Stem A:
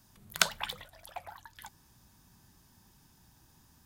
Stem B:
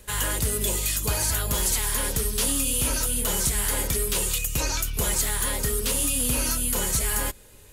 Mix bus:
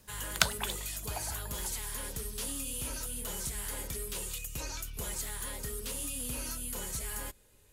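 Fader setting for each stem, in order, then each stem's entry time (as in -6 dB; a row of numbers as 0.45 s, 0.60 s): -0.5 dB, -13.0 dB; 0.00 s, 0.00 s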